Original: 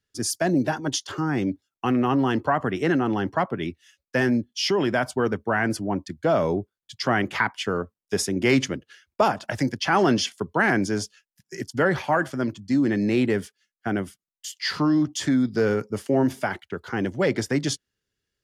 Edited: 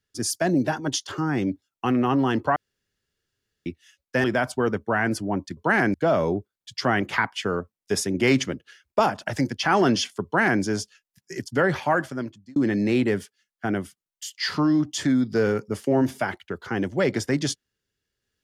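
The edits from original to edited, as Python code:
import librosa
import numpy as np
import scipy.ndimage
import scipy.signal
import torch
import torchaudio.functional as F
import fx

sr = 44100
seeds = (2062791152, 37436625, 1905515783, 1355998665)

y = fx.edit(x, sr, fx.room_tone_fill(start_s=2.56, length_s=1.1),
    fx.cut(start_s=4.24, length_s=0.59),
    fx.duplicate(start_s=10.47, length_s=0.37, to_s=6.16),
    fx.fade_out_span(start_s=12.19, length_s=0.59), tone=tone)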